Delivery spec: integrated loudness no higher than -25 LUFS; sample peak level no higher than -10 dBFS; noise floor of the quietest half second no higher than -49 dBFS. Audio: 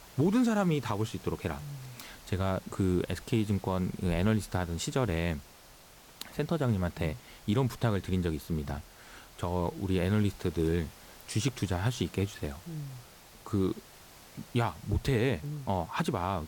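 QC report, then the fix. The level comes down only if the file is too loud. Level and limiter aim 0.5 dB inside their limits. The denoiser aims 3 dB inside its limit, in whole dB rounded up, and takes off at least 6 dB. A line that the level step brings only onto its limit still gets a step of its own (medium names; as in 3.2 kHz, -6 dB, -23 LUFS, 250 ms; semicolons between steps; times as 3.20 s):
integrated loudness -32.0 LUFS: pass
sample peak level -17.5 dBFS: pass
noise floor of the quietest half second -54 dBFS: pass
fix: none needed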